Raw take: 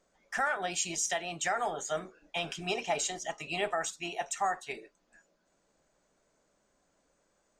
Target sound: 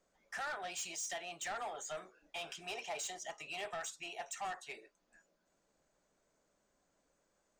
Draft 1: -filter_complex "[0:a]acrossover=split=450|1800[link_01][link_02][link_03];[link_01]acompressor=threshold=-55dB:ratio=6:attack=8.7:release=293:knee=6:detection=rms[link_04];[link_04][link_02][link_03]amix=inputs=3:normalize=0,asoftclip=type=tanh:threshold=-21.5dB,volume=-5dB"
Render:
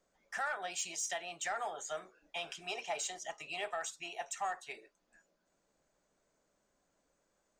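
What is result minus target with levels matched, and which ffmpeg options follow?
soft clipping: distortion −13 dB
-filter_complex "[0:a]acrossover=split=450|1800[link_01][link_02][link_03];[link_01]acompressor=threshold=-55dB:ratio=6:attack=8.7:release=293:knee=6:detection=rms[link_04];[link_04][link_02][link_03]amix=inputs=3:normalize=0,asoftclip=type=tanh:threshold=-31.5dB,volume=-5dB"

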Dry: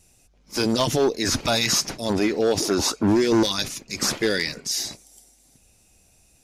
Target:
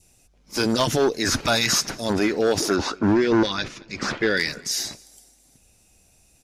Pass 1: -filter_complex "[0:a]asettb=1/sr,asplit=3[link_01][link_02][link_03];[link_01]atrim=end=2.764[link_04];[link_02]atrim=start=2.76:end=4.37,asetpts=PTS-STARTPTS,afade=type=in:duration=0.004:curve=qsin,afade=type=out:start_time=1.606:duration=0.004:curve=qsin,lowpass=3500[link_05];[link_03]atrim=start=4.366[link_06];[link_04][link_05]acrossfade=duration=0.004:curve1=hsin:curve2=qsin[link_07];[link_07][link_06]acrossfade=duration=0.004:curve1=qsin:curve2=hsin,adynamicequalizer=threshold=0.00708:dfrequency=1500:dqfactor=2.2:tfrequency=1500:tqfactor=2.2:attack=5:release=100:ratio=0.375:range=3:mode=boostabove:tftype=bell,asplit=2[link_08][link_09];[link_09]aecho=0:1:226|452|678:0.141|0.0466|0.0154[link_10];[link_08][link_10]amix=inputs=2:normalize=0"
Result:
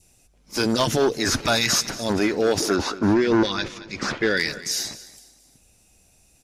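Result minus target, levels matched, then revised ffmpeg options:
echo-to-direct +9.5 dB
-filter_complex "[0:a]asettb=1/sr,asplit=3[link_01][link_02][link_03];[link_01]atrim=end=2.764[link_04];[link_02]atrim=start=2.76:end=4.37,asetpts=PTS-STARTPTS,afade=type=in:duration=0.004:curve=qsin,afade=type=out:start_time=1.606:duration=0.004:curve=qsin,lowpass=3500[link_05];[link_03]atrim=start=4.366[link_06];[link_04][link_05]acrossfade=duration=0.004:curve1=hsin:curve2=qsin[link_07];[link_07][link_06]acrossfade=duration=0.004:curve1=qsin:curve2=hsin,adynamicequalizer=threshold=0.00708:dfrequency=1500:dqfactor=2.2:tfrequency=1500:tqfactor=2.2:attack=5:release=100:ratio=0.375:range=3:mode=boostabove:tftype=bell,asplit=2[link_08][link_09];[link_09]aecho=0:1:226|452:0.0473|0.0156[link_10];[link_08][link_10]amix=inputs=2:normalize=0"

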